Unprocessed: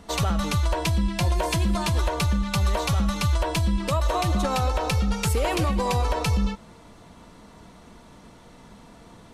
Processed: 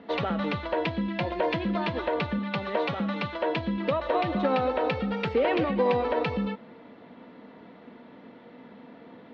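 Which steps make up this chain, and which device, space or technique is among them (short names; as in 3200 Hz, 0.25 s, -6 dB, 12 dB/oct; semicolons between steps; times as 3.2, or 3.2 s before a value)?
2.38–3.58 HPF 120 Hz 12 dB/oct; air absorption 190 m; kitchen radio (speaker cabinet 220–3900 Hz, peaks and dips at 250 Hz +9 dB, 490 Hz +6 dB, 1100 Hz -4 dB, 1900 Hz +4 dB)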